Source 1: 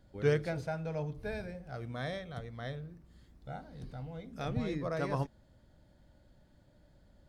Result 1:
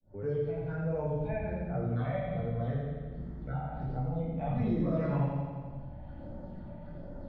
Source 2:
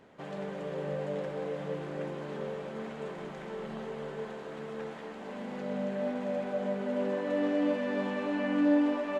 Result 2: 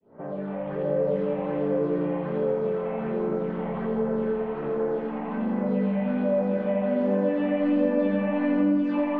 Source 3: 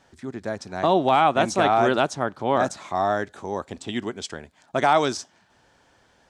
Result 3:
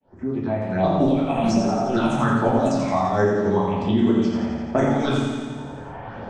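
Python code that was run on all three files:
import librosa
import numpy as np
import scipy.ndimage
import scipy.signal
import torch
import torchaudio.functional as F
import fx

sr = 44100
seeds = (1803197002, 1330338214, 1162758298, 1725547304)

p1 = fx.fade_in_head(x, sr, length_s=1.16)
p2 = fx.dynamic_eq(p1, sr, hz=200.0, q=1.5, threshold_db=-39.0, ratio=4.0, max_db=4)
p3 = fx.env_lowpass(p2, sr, base_hz=1300.0, full_db=-15.5)
p4 = fx.low_shelf(p3, sr, hz=120.0, db=-4.0)
p5 = fx.hpss(p4, sr, part='harmonic', gain_db=7)
p6 = fx.over_compress(p5, sr, threshold_db=-20.0, ratio=-0.5)
p7 = fx.phaser_stages(p6, sr, stages=6, low_hz=340.0, high_hz=3900.0, hz=1.3, feedback_pct=25)
p8 = p7 + fx.echo_feedback(p7, sr, ms=85, feedback_pct=57, wet_db=-4.5, dry=0)
p9 = fx.room_shoebox(p8, sr, seeds[0], volume_m3=110.0, walls='mixed', distance_m=1.5)
p10 = fx.band_squash(p9, sr, depth_pct=70)
y = p10 * librosa.db_to_amplitude(-6.0)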